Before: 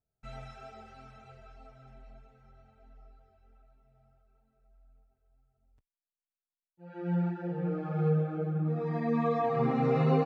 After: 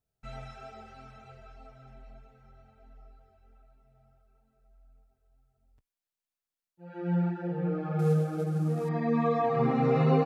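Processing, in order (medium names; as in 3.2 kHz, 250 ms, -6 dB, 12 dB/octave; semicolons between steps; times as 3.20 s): 7.99–8.89 s: CVSD coder 64 kbps; trim +2 dB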